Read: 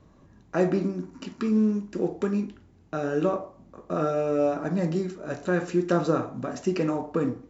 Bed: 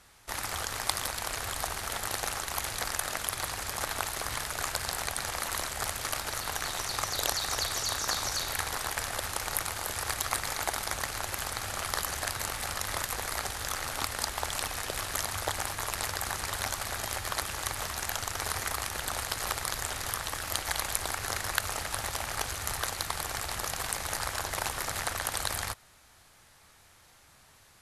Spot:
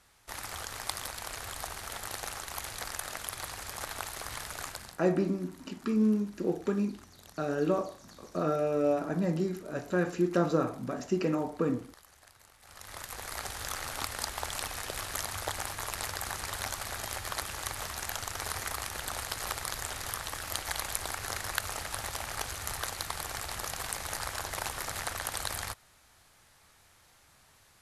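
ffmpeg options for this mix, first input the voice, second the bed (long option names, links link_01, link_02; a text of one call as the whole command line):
ffmpeg -i stem1.wav -i stem2.wav -filter_complex "[0:a]adelay=4450,volume=-3.5dB[link_01];[1:a]volume=16.5dB,afade=type=out:start_time=4.58:duration=0.42:silence=0.105925,afade=type=in:start_time=12.61:duration=0.97:silence=0.0794328[link_02];[link_01][link_02]amix=inputs=2:normalize=0" out.wav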